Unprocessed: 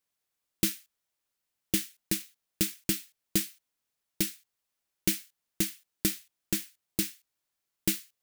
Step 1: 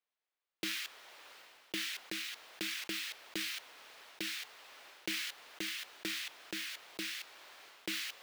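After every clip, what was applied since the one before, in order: three-band isolator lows -22 dB, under 370 Hz, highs -19 dB, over 4.2 kHz; decay stretcher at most 28 dB/s; trim -3.5 dB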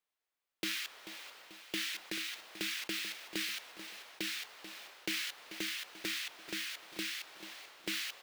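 feedback delay 438 ms, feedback 50%, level -12 dB; trim +1 dB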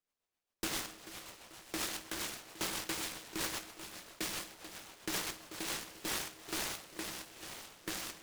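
rotary cabinet horn 7.5 Hz, later 1.1 Hz, at 5.51 s; on a send at -3.5 dB: reverberation RT60 0.45 s, pre-delay 7 ms; on the sum: delay time shaken by noise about 1.5 kHz, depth 0.16 ms; trim +1.5 dB

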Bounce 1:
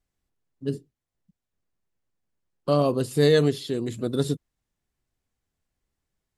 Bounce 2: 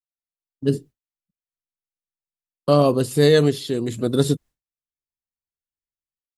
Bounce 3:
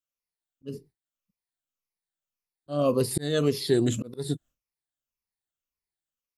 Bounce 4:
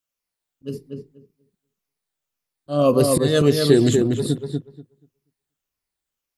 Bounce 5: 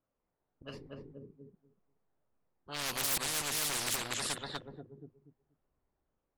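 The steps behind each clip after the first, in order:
expander -43 dBFS; treble shelf 9.1 kHz +4 dB; level rider gain up to 12 dB; trim -2 dB
drifting ripple filter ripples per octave 0.85, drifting -1.8 Hz, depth 11 dB; slow attack 556 ms
filtered feedback delay 241 ms, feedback 17%, low-pass 2 kHz, level -3.5 dB; trim +7 dB
level-controlled noise filter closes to 800 Hz, open at -15 dBFS; hard clipper -15 dBFS, distortion -10 dB; spectrum-flattening compressor 10:1; trim -2.5 dB

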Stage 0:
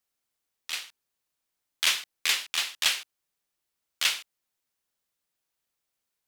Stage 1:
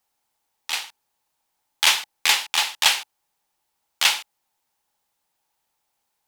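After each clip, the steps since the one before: peaking EQ 850 Hz +14.5 dB 0.38 oct; trim +6.5 dB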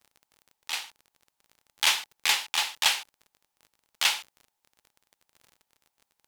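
crackle 32 per s -35 dBFS; trim -5.5 dB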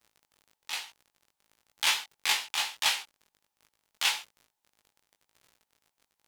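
chorus 1.1 Hz, delay 18 ms, depth 2.1 ms

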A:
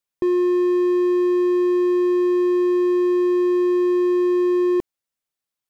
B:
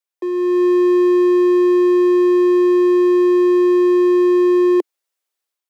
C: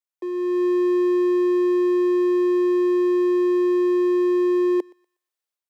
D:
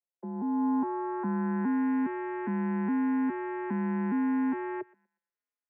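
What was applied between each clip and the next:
steep high-pass 320 Hz 48 dB/octave; level rider gain up to 9 dB; trim -3 dB
thinning echo 121 ms, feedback 32%, high-pass 760 Hz, level -21.5 dB; trim -6.5 dB
vocoder on a broken chord minor triad, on E3, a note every 411 ms; low-pass sweep 810 Hz -> 2.2 kHz, 0.26–1.92 s; mistuned SSB -130 Hz 470–3000 Hz

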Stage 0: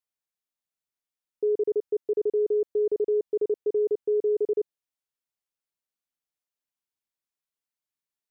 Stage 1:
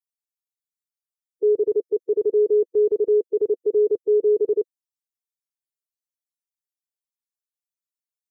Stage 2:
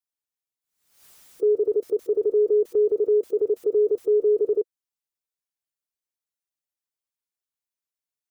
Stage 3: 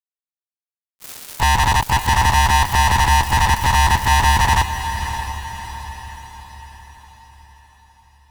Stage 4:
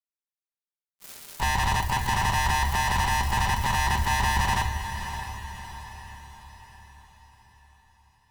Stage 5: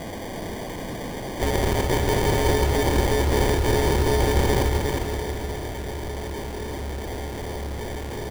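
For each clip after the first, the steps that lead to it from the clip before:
expander on every frequency bin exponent 3; trim +7 dB
dynamic bell 200 Hz, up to -5 dB, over -33 dBFS, Q 0.94; swell ahead of each attack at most 87 dB/s
ring modulator 490 Hz; fuzz box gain 50 dB, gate -50 dBFS; echo that smears into a reverb 612 ms, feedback 49%, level -9.5 dB
reverberation RT60 0.60 s, pre-delay 5 ms, DRR 5.5 dB; trim -9 dB
one-bit delta coder 16 kbps, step -29 dBFS; sample-and-hold 33×; on a send: delay 359 ms -4.5 dB; on the sum: trim +3 dB

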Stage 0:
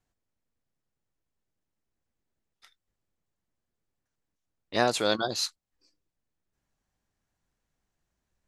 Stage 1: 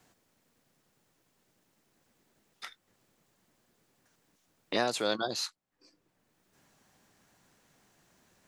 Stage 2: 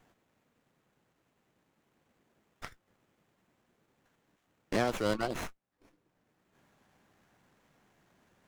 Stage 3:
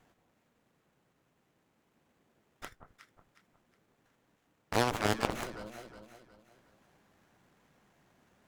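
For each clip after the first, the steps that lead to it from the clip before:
three bands compressed up and down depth 70%; trim -3.5 dB
sliding maximum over 9 samples
echo whose repeats swap between lows and highs 182 ms, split 1.2 kHz, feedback 60%, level -6.5 dB; Chebyshev shaper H 3 -14 dB, 7 -17 dB, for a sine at -15 dBFS; trim +4.5 dB

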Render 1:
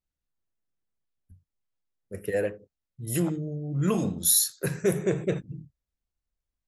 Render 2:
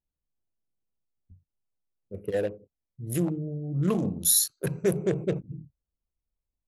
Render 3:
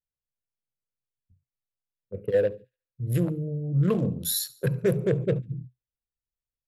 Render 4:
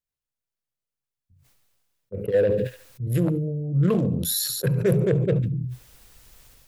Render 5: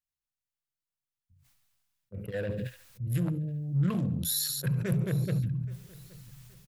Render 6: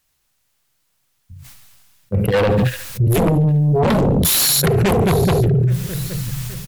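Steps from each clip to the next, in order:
local Wiener filter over 25 samples
gate -44 dBFS, range -11 dB; graphic EQ with 31 bands 125 Hz +11 dB, 315 Hz -3 dB, 500 Hz +7 dB, 800 Hz -7 dB, 1.6 kHz +4 dB, 6.3 kHz -11 dB, 10 kHz -11 dB; feedback echo behind a high-pass 71 ms, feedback 41%, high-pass 2.6 kHz, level -19.5 dB
decay stretcher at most 27 dB/s; trim +1.5 dB
peaking EQ 440 Hz -13.5 dB 0.95 oct; in parallel at -11 dB: one-sided clip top -21.5 dBFS; on the sum: feedback delay 824 ms, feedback 33%, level -22 dB; trim -6.5 dB
sine folder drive 13 dB, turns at -17 dBFS; compression 2.5:1, threshold -23 dBFS, peak gain reduction 3.5 dB; trim +8.5 dB

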